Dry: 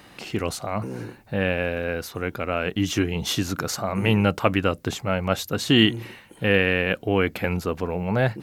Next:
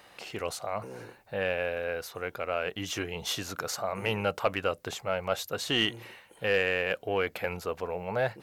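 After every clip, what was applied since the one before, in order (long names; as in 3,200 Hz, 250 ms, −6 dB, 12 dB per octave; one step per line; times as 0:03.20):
low shelf with overshoot 380 Hz −8 dB, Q 1.5
soft clipping −7.5 dBFS, distortion −22 dB
level −5.5 dB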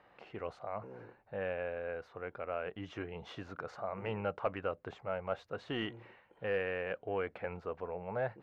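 low-pass filter 1,700 Hz 12 dB per octave
level −6.5 dB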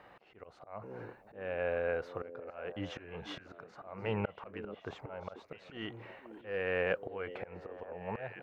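volume swells 407 ms
echo through a band-pass that steps 489 ms, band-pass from 310 Hz, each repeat 1.4 octaves, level −7 dB
level +6.5 dB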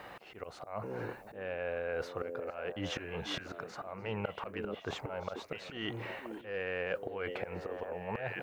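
high-shelf EQ 4,500 Hz +11 dB
reversed playback
downward compressor 4 to 1, threshold −43 dBFS, peak gain reduction 13.5 dB
reversed playback
level +8 dB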